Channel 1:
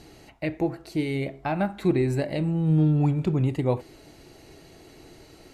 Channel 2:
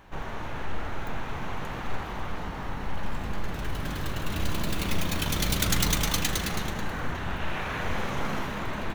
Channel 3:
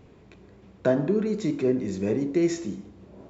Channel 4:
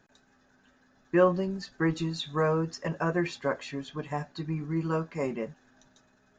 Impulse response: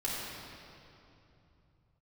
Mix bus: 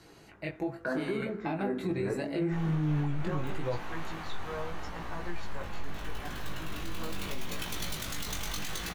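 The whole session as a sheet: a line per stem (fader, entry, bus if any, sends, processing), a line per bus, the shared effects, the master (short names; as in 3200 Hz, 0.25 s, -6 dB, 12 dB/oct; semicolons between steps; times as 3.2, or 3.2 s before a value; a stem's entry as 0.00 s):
-2.5 dB, 0.00 s, no send, comb 6 ms, depth 36%
-3.0 dB, 2.40 s, send -12 dB, compressor, threshold -25 dBFS, peak gain reduction 6.5 dB
-1.5 dB, 0.00 s, no send, synth low-pass 1500 Hz, resonance Q 3.5
-8.5 dB, 2.10 s, no send, dry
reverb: on, RT60 2.9 s, pre-delay 3 ms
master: low shelf 480 Hz -5.5 dB; chorus 0.78 Hz, delay 17 ms, depth 4.3 ms; limiter -23 dBFS, peak gain reduction 7.5 dB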